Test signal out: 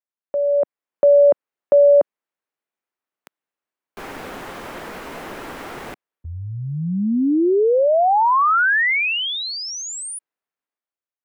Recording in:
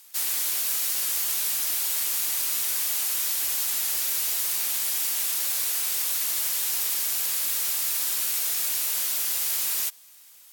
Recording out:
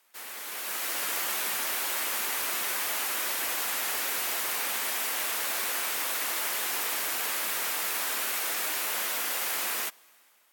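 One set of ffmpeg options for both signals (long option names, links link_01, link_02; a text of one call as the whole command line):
ffmpeg -i in.wav -filter_complex "[0:a]acrossover=split=210 2400:gain=0.158 1 0.178[link_01][link_02][link_03];[link_01][link_02][link_03]amix=inputs=3:normalize=0,dynaudnorm=framelen=150:gausssize=9:maxgain=11dB,volume=-2dB" out.wav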